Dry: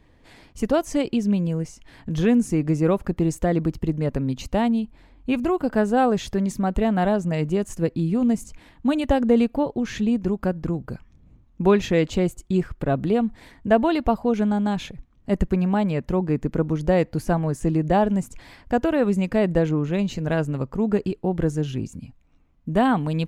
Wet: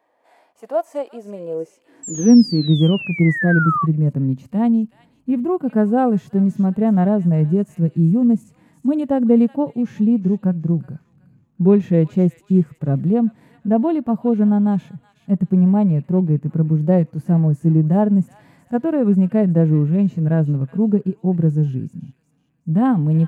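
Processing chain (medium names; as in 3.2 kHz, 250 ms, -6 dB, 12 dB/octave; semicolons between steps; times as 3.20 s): peaking EQ 4.2 kHz -11.5 dB 2.4 oct; feedback echo behind a high-pass 373 ms, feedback 31%, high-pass 2.1 kHz, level -11 dB; painted sound fall, 2.03–3.86 s, 1.1–7.7 kHz -21 dBFS; high-pass sweep 690 Hz -> 150 Hz, 1.16–2.82 s; harmonic-percussive split percussive -12 dB; trim +2 dB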